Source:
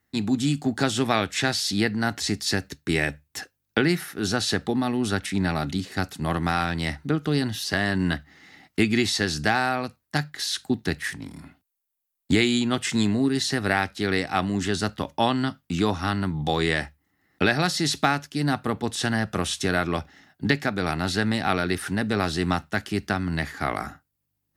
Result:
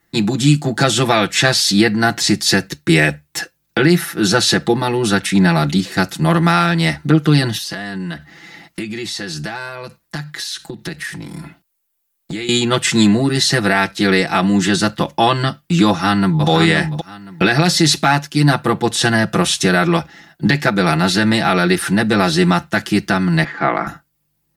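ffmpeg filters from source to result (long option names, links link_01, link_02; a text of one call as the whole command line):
ffmpeg -i in.wav -filter_complex "[0:a]asettb=1/sr,asplit=3[link_01][link_02][link_03];[link_01]atrim=end=7.574[link_04];[link_02]atrim=start=7.57:end=12.49,asetpts=PTS-STARTPTS,afade=type=in:duration=0.004:curve=qsin,afade=type=out:start_time=4.916:duration=0.004:curve=qsin,acompressor=threshold=-35dB:ratio=4:attack=3.2:release=140:knee=1:detection=peak[link_05];[link_03]atrim=start=12.486[link_06];[link_04][link_05]acrossfade=duration=0.004:curve1=hsin:curve2=qsin[link_07];[link_07][link_06]acrossfade=duration=0.004:curve1=qsin:curve2=hsin,asplit=2[link_08][link_09];[link_09]afade=type=in:start_time=15.87:duration=0.01,afade=type=out:start_time=16.48:duration=0.01,aecho=0:1:520|1040|1560:0.473151|0.0946303|0.0189261[link_10];[link_08][link_10]amix=inputs=2:normalize=0,asettb=1/sr,asplit=3[link_11][link_12][link_13];[link_11]atrim=end=23.444[link_14];[link_12]atrim=start=23.44:end=23.87,asetpts=PTS-STARTPTS,afade=type=in:duration=0.004:curve=qsin,afade=type=out:start_time=0.426:duration=0.004:curve=qsin,highpass=180,lowpass=2400[link_15];[link_13]atrim=start=23.866[link_16];[link_14][link_15]acrossfade=duration=0.004:curve1=hsin:curve2=qsin[link_17];[link_17][link_16]acrossfade=duration=0.004:curve1=qsin:curve2=hsin,aecho=1:1:5.9:0.93,alimiter=level_in=9.5dB:limit=-1dB:release=50:level=0:latency=1,volume=-1dB" out.wav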